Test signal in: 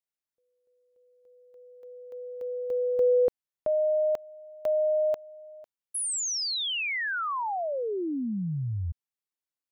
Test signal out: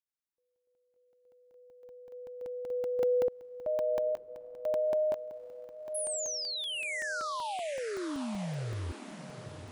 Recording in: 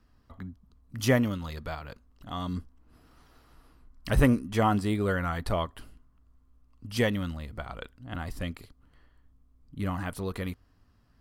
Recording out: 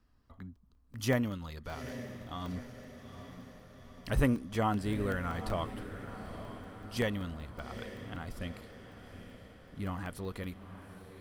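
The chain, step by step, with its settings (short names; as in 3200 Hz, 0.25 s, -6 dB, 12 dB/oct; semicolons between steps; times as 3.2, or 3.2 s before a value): diffused feedback echo 0.847 s, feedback 57%, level -11 dB; crackling interface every 0.19 s, samples 64, zero, from 0.56; gain -6 dB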